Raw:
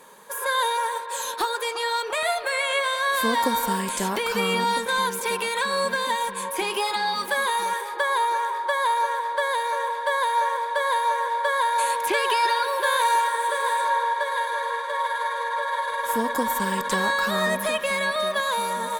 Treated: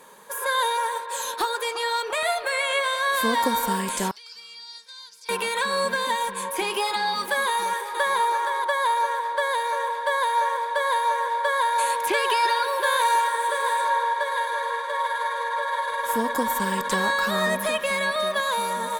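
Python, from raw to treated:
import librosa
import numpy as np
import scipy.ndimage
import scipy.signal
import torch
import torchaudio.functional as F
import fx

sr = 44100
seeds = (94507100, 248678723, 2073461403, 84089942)

y = fx.bandpass_q(x, sr, hz=4900.0, q=7.1, at=(4.11, 5.29))
y = fx.echo_throw(y, sr, start_s=7.47, length_s=0.7, ms=470, feedback_pct=10, wet_db=-6.5)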